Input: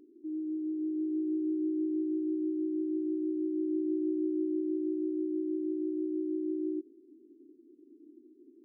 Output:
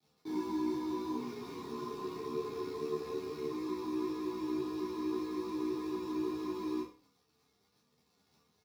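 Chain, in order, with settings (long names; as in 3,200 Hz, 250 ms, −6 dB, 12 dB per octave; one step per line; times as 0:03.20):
0:01.15–0:03.49: three sine waves on the formant tracks
Butterworth high-pass 340 Hz 72 dB per octave
parametric band 440 Hz −8 dB 2.5 octaves
downward compressor 8 to 1, threshold −51 dBFS, peak gain reduction 11 dB
brickwall limiter −51.5 dBFS, peak gain reduction 5.5 dB
bit reduction 9 bits
surface crackle 150 per second −62 dBFS
double-tracking delay 25 ms −5 dB
flutter between parallel walls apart 5 metres, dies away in 0.39 s
convolution reverb RT60 0.30 s, pre-delay 3 ms, DRR −5 dB
string-ensemble chorus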